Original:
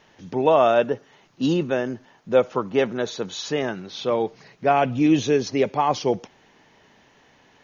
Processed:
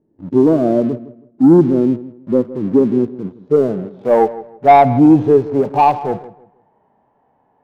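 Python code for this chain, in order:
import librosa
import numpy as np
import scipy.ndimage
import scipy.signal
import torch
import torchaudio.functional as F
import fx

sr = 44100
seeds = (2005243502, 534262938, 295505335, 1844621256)

p1 = fx.filter_sweep_lowpass(x, sr, from_hz=320.0, to_hz=830.0, start_s=3.24, end_s=4.13, q=2.6)
p2 = fx.dynamic_eq(p1, sr, hz=160.0, q=1.3, threshold_db=-35.0, ratio=4.0, max_db=3)
p3 = fx.leveller(p2, sr, passes=2)
p4 = fx.hpss(p3, sr, part='percussive', gain_db=-15)
p5 = p4 + fx.echo_filtered(p4, sr, ms=161, feedback_pct=28, hz=2100.0, wet_db=-16.0, dry=0)
y = p5 * 10.0 ** (2.0 / 20.0)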